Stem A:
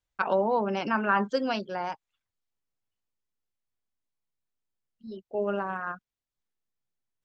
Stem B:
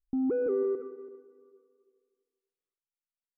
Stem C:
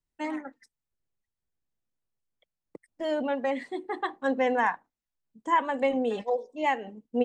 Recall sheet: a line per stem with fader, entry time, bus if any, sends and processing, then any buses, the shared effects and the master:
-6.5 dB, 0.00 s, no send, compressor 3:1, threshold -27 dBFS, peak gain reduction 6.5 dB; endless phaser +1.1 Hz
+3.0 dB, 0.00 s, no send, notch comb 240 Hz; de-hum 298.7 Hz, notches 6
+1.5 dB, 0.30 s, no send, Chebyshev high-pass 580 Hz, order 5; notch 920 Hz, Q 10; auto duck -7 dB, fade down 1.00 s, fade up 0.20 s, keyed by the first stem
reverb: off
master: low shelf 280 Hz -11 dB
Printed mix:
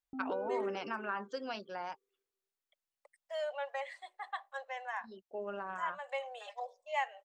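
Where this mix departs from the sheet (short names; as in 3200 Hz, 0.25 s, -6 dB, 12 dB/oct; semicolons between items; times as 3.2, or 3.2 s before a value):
stem A: missing endless phaser +1.1 Hz; stem B +3.0 dB -> -4.0 dB; stem C +1.5 dB -> -5.0 dB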